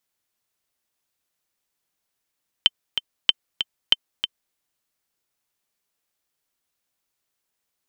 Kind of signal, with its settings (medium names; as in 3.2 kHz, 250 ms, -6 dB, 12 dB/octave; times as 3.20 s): metronome 190 bpm, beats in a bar 2, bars 3, 3.09 kHz, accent 8.5 dB -1 dBFS